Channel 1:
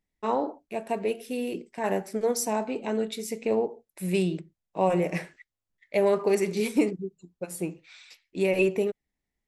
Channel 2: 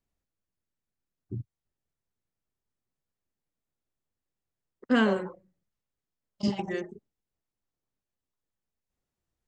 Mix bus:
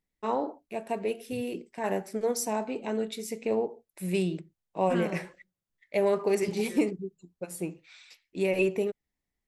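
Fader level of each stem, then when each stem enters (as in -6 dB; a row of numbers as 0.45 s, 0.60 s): -2.5 dB, -11.0 dB; 0.00 s, 0.00 s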